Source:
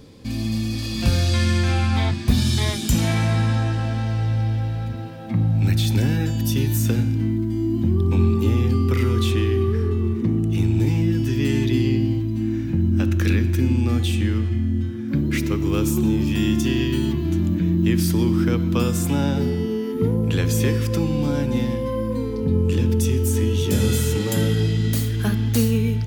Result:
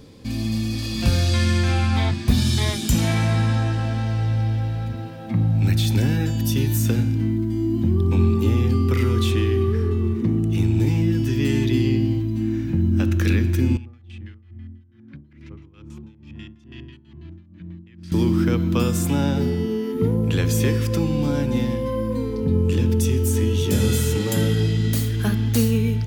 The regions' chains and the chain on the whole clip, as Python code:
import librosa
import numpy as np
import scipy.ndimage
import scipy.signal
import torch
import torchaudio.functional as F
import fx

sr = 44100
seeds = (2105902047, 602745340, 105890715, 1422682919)

y = fx.chain(x, sr, fx.tone_stack(knobs='5-5-5'),
    fx.filter_lfo_lowpass(shape='square', hz=6.1, low_hz=760.0, high_hz=2700.0, q=0.74),
    fx.tremolo(hz=2.3, depth=0.83), at=(13.77, 18.12))